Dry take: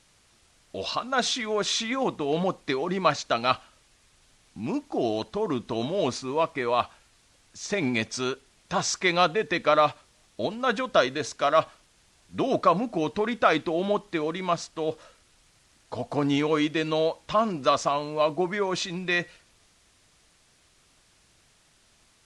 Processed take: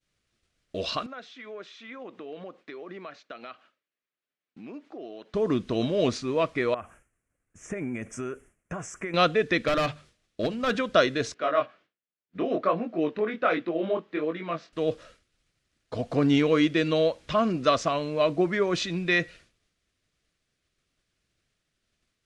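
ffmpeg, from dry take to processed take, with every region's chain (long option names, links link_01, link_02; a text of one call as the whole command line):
ffmpeg -i in.wav -filter_complex "[0:a]asettb=1/sr,asplit=3[link_01][link_02][link_03];[link_01]atrim=end=1.064[link_04];[link_02]atrim=start=1.06:end=5.34,asetpts=PTS-STARTPTS,afade=type=in:duration=0.004:curve=qsin,afade=type=out:start_time=4.276:duration=0.004:curve=qsin,aemphasis=mode=production:type=bsi,acompressor=threshold=-42dB:ratio=3:attack=3.2:release=140:knee=1:detection=peak,highpass=200,lowpass=2300[link_05];[link_03]atrim=start=5.336[link_06];[link_04][link_05]acrossfade=duration=0.004:curve1=hsin:curve2=qsin[link_07];[link_07][link_06]acrossfade=duration=0.004:curve1=qsin:curve2=hsin,asettb=1/sr,asplit=3[link_08][link_09][link_10];[link_08]atrim=end=6.744[link_11];[link_09]atrim=start=6.74:end=9.14,asetpts=PTS-STARTPTS,afade=type=in:duration=0.004:curve=qsin,afade=type=out:start_time=2.396:duration=0.004:curve=qsin,acompressor=threshold=-30dB:ratio=10:attack=3.2:release=140:knee=1:detection=peak,asuperstop=centerf=4200:order=4:qfactor=0.66,adynamicequalizer=threshold=0.00158:dfrequency=3200:dqfactor=0.7:tfrequency=3200:tqfactor=0.7:attack=5:release=100:ratio=0.375:range=4:mode=boostabove:tftype=highshelf[link_12];[link_10]atrim=start=9.136[link_13];[link_11][link_12]acrossfade=duration=0.004:curve1=hsin:curve2=qsin[link_14];[link_14][link_13]acrossfade=duration=0.004:curve1=qsin:curve2=hsin,asettb=1/sr,asplit=3[link_15][link_16][link_17];[link_15]atrim=end=9.674[link_18];[link_16]atrim=start=9.67:end=10.75,asetpts=PTS-STARTPTS,afade=type=in:duration=0.004:curve=qsin,afade=type=out:start_time=1.076:duration=0.004:curve=qsin,bandreject=frequency=50:width_type=h:width=6,bandreject=frequency=100:width_type=h:width=6,bandreject=frequency=150:width_type=h:width=6,bandreject=frequency=200:width_type=h:width=6,volume=22dB,asoftclip=hard,volume=-22dB[link_19];[link_17]atrim=start=10.746[link_20];[link_18][link_19]acrossfade=duration=0.004:curve1=hsin:curve2=qsin[link_21];[link_21][link_20]acrossfade=duration=0.004:curve1=qsin:curve2=hsin,asettb=1/sr,asplit=3[link_22][link_23][link_24];[link_22]atrim=end=11.344[link_25];[link_23]atrim=start=11.34:end=14.73,asetpts=PTS-STARTPTS,afade=type=in:duration=0.004:curve=qsin,afade=type=out:start_time=3.386:duration=0.004:curve=qsin,highpass=240,lowpass=2600,flanger=delay=17:depth=6.5:speed=1.3[link_26];[link_24]atrim=start=14.726[link_27];[link_25][link_26]acrossfade=duration=0.004:curve1=hsin:curve2=qsin[link_28];[link_28][link_27]acrossfade=duration=0.004:curve1=qsin:curve2=hsin,equalizer=frequency=890:width=2.4:gain=-11.5,agate=range=-33dB:threshold=-51dB:ratio=3:detection=peak,highshelf=frequency=5700:gain=-11,volume=3.5dB" out.wav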